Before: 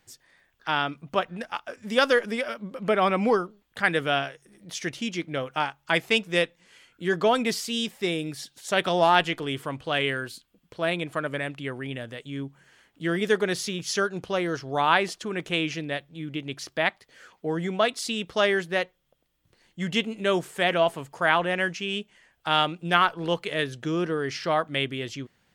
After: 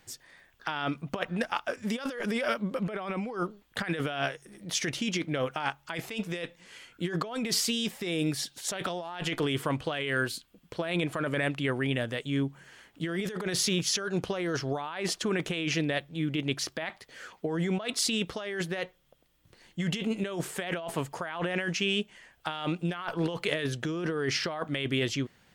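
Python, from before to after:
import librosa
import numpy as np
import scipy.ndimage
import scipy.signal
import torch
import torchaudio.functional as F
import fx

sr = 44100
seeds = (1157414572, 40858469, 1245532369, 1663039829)

y = fx.over_compress(x, sr, threshold_db=-31.0, ratio=-1.0)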